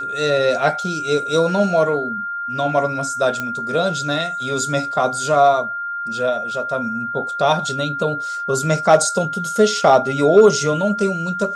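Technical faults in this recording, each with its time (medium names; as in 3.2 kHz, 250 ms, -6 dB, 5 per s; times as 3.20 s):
whine 1.4 kHz -23 dBFS
3.40 s: pop -10 dBFS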